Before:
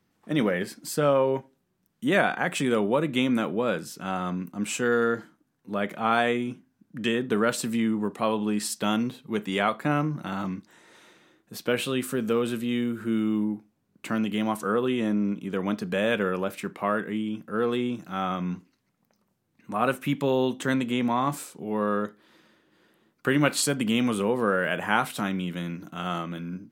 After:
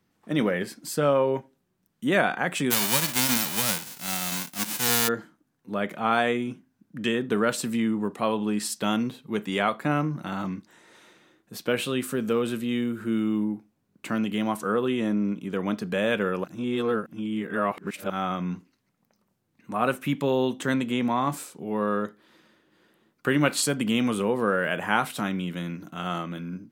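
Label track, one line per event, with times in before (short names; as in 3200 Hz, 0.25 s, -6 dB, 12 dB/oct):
2.700000	5.070000	spectral whitening exponent 0.1
16.440000	18.100000	reverse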